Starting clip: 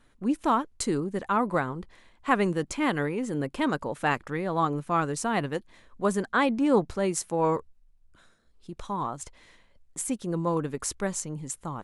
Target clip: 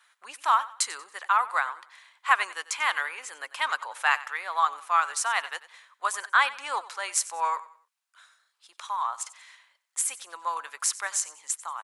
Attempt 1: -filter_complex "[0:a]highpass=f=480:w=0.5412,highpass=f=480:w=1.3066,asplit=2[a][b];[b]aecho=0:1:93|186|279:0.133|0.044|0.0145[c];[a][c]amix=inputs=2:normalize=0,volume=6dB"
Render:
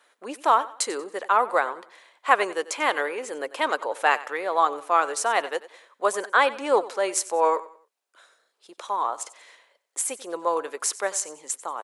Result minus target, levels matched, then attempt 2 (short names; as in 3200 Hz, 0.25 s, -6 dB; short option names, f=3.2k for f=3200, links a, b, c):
500 Hz band +15.5 dB
-filter_complex "[0:a]highpass=f=990:w=0.5412,highpass=f=990:w=1.3066,asplit=2[a][b];[b]aecho=0:1:93|186|279:0.133|0.044|0.0145[c];[a][c]amix=inputs=2:normalize=0,volume=6dB"